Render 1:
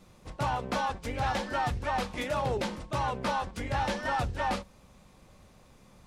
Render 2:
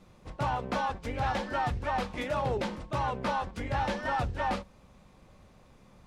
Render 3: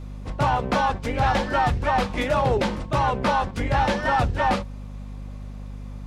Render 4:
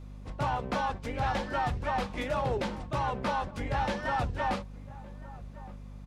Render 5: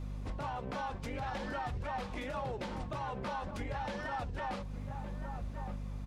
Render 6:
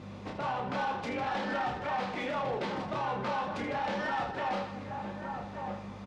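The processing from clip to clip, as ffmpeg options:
-af "highshelf=f=4.9k:g=-8.5"
-af "aeval=exprs='val(0)+0.00708*(sin(2*PI*50*n/s)+sin(2*PI*2*50*n/s)/2+sin(2*PI*3*50*n/s)/3+sin(2*PI*4*50*n/s)/4+sin(2*PI*5*50*n/s)/5)':c=same,volume=9dB"
-filter_complex "[0:a]asplit=2[a][b];[b]adelay=1166,volume=-18dB,highshelf=f=4k:g=-26.2[c];[a][c]amix=inputs=2:normalize=0,volume=-9dB"
-af "acompressor=threshold=-34dB:ratio=6,alimiter=level_in=10.5dB:limit=-24dB:level=0:latency=1:release=84,volume=-10.5dB,flanger=delay=1:depth=7.5:regen=-71:speed=0.52:shape=triangular,volume=8dB"
-filter_complex "[0:a]highpass=200,lowpass=4.9k,asplit=2[a][b];[b]aecho=0:1:30|78|154.8|277.7|474.3:0.631|0.398|0.251|0.158|0.1[c];[a][c]amix=inputs=2:normalize=0,asoftclip=type=tanh:threshold=-32.5dB,volume=6.5dB"

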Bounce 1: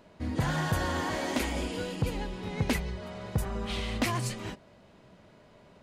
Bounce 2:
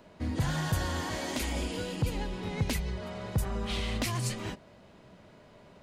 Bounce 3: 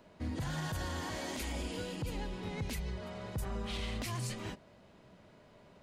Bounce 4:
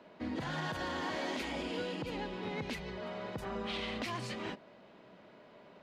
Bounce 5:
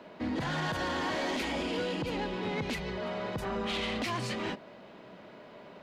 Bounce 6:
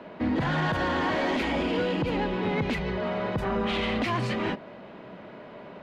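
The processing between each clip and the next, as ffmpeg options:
-filter_complex "[0:a]acrossover=split=160|3000[a][b][c];[b]acompressor=threshold=-35dB:ratio=6[d];[a][d][c]amix=inputs=3:normalize=0,volume=1.5dB"
-af "alimiter=level_in=0.5dB:limit=-24dB:level=0:latency=1:release=28,volume=-0.5dB,volume=-4.5dB"
-filter_complex "[0:a]acrossover=split=180 4700:gain=0.126 1 0.126[a][b][c];[a][b][c]amix=inputs=3:normalize=0,volume=4dB"
-af "asoftclip=type=tanh:threshold=-33dB,volume=7dB"
-af "bass=f=250:g=2,treble=f=4k:g=-12,volume=6dB"

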